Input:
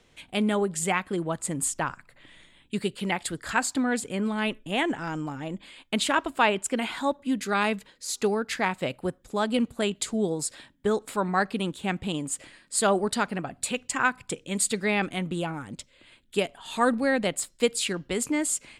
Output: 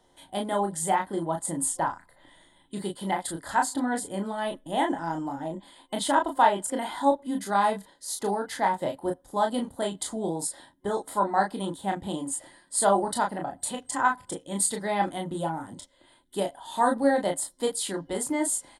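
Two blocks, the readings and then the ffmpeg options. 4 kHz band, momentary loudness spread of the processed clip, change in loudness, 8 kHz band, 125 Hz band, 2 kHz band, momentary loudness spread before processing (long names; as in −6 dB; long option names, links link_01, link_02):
−5.0 dB, 11 LU, −0.5 dB, 0.0 dB, −4.0 dB, −5.0 dB, 9 LU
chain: -af "superequalizer=6b=1.78:8b=2.24:9b=3.16:12b=0.251:16b=2.51,aecho=1:1:25|36:0.473|0.531,volume=-6dB"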